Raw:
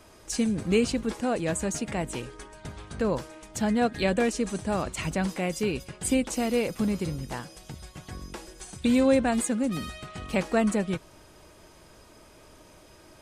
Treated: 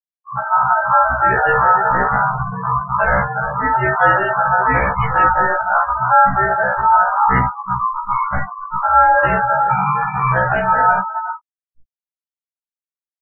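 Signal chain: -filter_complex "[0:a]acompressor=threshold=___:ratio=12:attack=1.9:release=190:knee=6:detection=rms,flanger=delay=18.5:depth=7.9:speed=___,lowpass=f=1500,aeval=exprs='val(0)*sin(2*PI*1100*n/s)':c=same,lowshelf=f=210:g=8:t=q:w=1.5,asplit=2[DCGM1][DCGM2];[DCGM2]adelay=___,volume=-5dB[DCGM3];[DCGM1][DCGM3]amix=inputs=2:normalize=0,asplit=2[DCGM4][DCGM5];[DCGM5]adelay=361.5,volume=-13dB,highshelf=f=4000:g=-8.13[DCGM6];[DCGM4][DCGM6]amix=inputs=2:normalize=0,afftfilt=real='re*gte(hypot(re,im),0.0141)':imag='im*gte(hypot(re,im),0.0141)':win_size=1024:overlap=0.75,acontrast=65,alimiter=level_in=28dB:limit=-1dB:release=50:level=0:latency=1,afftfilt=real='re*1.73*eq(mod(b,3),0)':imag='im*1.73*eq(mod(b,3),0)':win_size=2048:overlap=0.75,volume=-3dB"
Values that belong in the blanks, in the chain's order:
-24dB, 0.89, 48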